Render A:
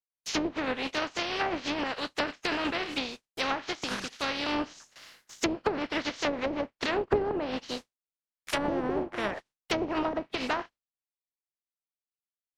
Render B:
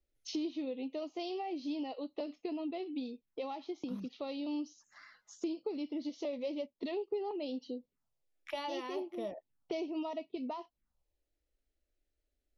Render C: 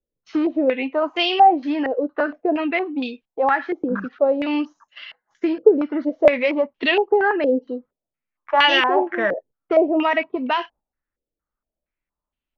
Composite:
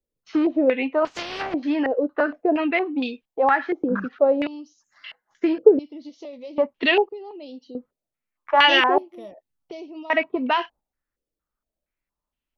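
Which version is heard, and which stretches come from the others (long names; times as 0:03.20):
C
0:01.05–0:01.54: punch in from A
0:04.47–0:05.04: punch in from B
0:05.79–0:06.58: punch in from B
0:07.09–0:07.75: punch in from B
0:08.98–0:10.10: punch in from B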